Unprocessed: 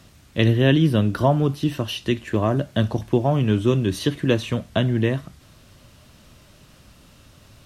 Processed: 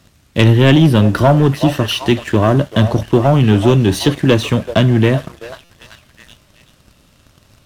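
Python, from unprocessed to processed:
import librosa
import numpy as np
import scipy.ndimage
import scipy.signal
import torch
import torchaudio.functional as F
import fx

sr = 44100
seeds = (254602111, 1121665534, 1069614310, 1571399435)

y = fx.echo_stepped(x, sr, ms=381, hz=700.0, octaves=0.7, feedback_pct=70, wet_db=-9.5)
y = fx.leveller(y, sr, passes=2)
y = fx.buffer_glitch(y, sr, at_s=(5.64,), block=256, repeats=9)
y = y * 10.0 ** (2.5 / 20.0)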